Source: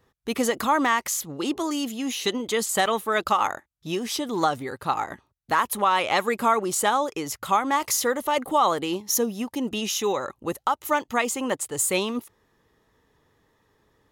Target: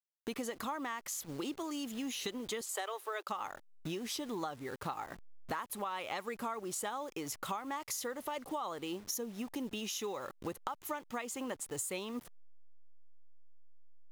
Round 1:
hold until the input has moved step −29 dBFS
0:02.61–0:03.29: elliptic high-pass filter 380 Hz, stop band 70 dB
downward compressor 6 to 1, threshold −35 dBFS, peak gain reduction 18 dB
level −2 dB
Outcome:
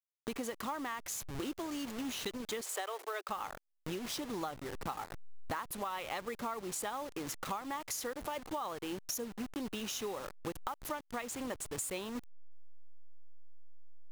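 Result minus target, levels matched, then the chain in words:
hold until the input has moved: distortion +12 dB
hold until the input has moved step −40.5 dBFS
0:02.61–0:03.29: elliptic high-pass filter 380 Hz, stop band 70 dB
downward compressor 6 to 1, threshold −35 dBFS, peak gain reduction 18 dB
level −2 dB

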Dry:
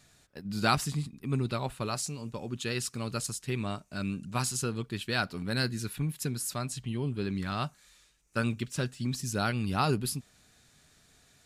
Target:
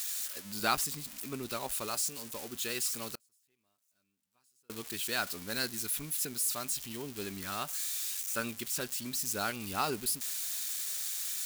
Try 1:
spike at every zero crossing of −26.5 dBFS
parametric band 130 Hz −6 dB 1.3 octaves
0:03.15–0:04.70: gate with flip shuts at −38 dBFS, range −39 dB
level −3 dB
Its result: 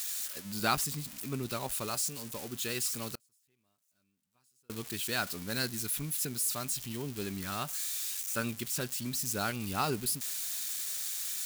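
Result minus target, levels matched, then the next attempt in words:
125 Hz band +7.5 dB
spike at every zero crossing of −26.5 dBFS
parametric band 130 Hz −15 dB 1.3 octaves
0:03.15–0:04.70: gate with flip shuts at −38 dBFS, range −39 dB
level −3 dB

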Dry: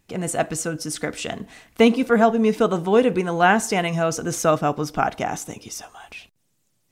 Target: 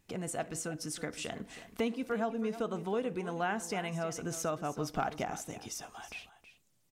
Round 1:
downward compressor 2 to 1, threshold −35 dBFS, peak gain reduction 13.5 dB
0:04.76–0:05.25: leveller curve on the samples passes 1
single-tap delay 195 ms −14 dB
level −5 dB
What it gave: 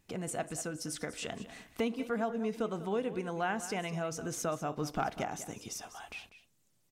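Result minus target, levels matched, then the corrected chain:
echo 126 ms early
downward compressor 2 to 1, threshold −35 dBFS, peak gain reduction 13.5 dB
0:04.76–0:05.25: leveller curve on the samples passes 1
single-tap delay 321 ms −14 dB
level −5 dB

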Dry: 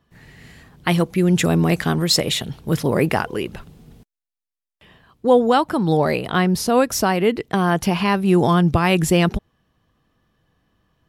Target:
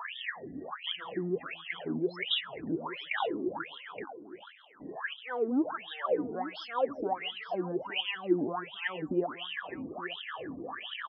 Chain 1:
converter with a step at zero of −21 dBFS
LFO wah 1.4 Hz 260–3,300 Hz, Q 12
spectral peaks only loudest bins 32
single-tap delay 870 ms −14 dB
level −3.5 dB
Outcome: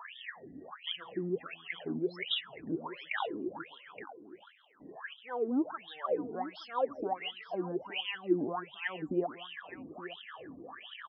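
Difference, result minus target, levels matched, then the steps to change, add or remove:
converter with a step at zero: distortion −5 dB
change: converter with a step at zero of −13.5 dBFS

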